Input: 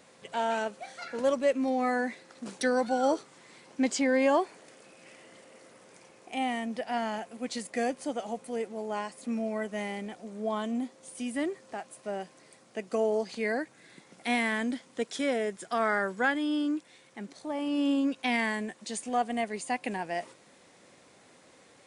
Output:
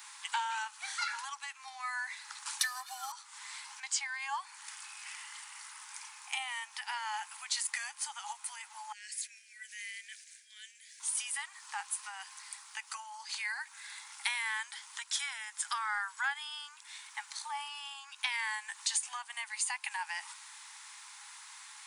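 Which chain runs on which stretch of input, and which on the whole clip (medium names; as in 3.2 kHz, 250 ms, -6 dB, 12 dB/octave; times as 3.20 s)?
2.59–3.12 s: CVSD coder 64 kbps + peaking EQ 750 Hz +5 dB 0.25 oct + comb 1.7 ms, depth 94%
8.92–11.00 s: compression 4:1, threshold -40 dBFS + rippled Chebyshev high-pass 1.6 kHz, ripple 3 dB
whole clip: treble shelf 6.5 kHz +9.5 dB; compression 6:1, threshold -36 dBFS; Chebyshev high-pass 830 Hz, order 8; trim +8 dB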